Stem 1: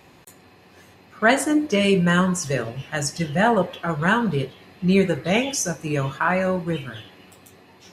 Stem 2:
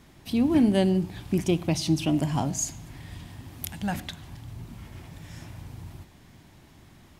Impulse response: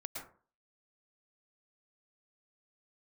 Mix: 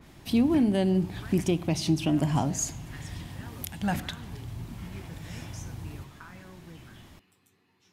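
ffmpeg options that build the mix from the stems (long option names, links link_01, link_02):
-filter_complex "[0:a]equalizer=frequency=610:width_type=o:width=0.57:gain=-13,acompressor=threshold=-28dB:ratio=6,volume=-17dB[link_01];[1:a]adynamicequalizer=threshold=0.00447:dfrequency=2900:dqfactor=0.7:tfrequency=2900:tqfactor=0.7:attack=5:release=100:ratio=0.375:range=1.5:mode=cutabove:tftype=highshelf,volume=2dB[link_02];[link_01][link_02]amix=inputs=2:normalize=0,alimiter=limit=-15dB:level=0:latency=1:release=286"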